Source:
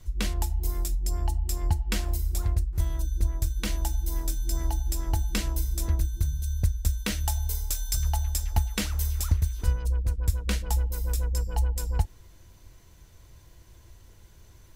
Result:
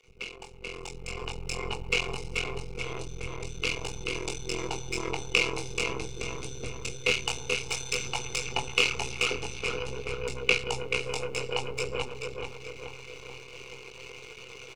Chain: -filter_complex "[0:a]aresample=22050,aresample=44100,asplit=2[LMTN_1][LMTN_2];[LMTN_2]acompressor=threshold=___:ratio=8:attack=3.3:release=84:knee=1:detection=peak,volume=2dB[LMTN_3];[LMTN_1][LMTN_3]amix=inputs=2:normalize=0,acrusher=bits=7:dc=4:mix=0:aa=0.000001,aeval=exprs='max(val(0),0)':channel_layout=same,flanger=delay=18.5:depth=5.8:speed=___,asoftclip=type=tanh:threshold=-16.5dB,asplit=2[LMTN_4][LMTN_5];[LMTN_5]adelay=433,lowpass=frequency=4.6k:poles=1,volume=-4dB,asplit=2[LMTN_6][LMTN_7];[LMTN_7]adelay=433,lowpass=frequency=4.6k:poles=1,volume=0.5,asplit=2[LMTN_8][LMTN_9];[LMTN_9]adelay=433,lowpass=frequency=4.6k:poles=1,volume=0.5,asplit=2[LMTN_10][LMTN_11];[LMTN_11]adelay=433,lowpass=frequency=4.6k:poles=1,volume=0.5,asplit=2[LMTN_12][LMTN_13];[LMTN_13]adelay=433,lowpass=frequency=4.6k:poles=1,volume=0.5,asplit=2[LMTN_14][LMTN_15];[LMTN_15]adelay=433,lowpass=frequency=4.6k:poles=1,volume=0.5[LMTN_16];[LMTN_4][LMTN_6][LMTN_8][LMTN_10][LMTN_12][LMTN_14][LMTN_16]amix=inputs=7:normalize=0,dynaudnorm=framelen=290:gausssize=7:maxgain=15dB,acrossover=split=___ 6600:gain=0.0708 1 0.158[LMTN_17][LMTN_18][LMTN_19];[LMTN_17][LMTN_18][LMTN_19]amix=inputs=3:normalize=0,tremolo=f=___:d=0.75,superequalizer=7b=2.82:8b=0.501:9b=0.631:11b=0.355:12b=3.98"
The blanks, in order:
-34dB, 0.49, 380, 130